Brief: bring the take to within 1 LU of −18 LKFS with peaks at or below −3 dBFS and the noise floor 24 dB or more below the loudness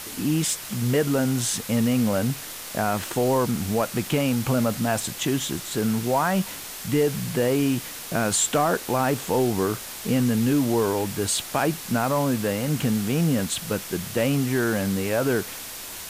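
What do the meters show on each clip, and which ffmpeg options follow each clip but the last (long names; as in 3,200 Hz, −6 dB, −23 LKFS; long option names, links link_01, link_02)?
background noise floor −37 dBFS; target noise floor −48 dBFS; integrated loudness −24.0 LKFS; sample peak −10.5 dBFS; target loudness −18.0 LKFS
→ -af "afftdn=noise_reduction=11:noise_floor=-37"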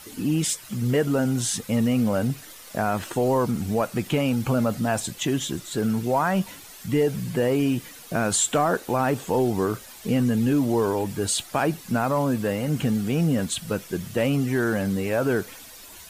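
background noise floor −44 dBFS; target noise floor −49 dBFS
→ -af "afftdn=noise_reduction=6:noise_floor=-44"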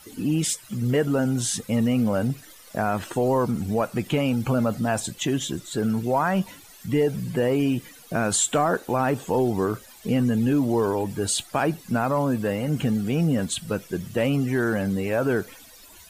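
background noise floor −48 dBFS; target noise floor −49 dBFS
→ -af "afftdn=noise_reduction=6:noise_floor=-48"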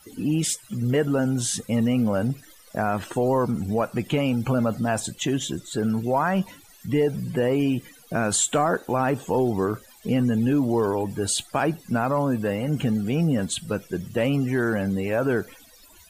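background noise floor −51 dBFS; integrated loudness −24.5 LKFS; sample peak −11.5 dBFS; target loudness −18.0 LKFS
→ -af "volume=6.5dB"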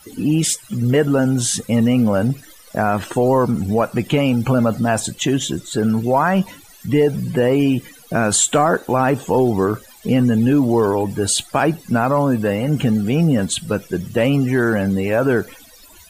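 integrated loudness −18.0 LKFS; sample peak −5.0 dBFS; background noise floor −45 dBFS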